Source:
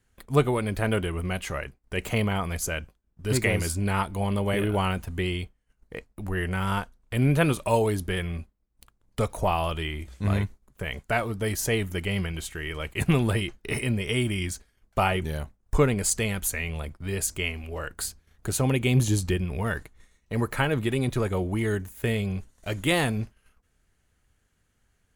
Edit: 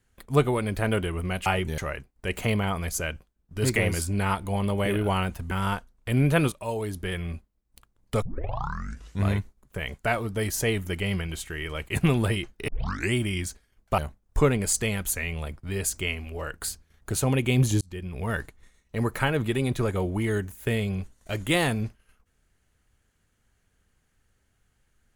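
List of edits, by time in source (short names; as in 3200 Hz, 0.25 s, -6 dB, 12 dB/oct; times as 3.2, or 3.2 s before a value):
5.19–6.56 cut
7.57–8.4 fade in, from -13.5 dB
9.27 tape start 1.01 s
13.73 tape start 0.46 s
15.03–15.35 move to 1.46
19.18–19.71 fade in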